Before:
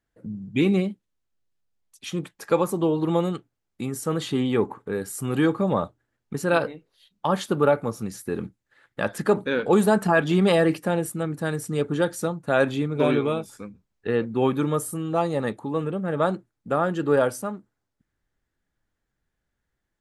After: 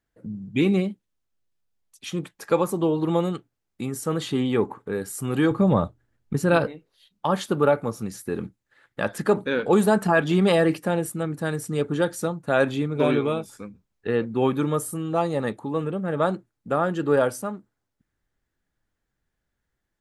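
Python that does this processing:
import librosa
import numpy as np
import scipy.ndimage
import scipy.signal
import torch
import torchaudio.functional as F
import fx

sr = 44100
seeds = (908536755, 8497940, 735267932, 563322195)

y = fx.low_shelf(x, sr, hz=180.0, db=12.0, at=(5.51, 6.67))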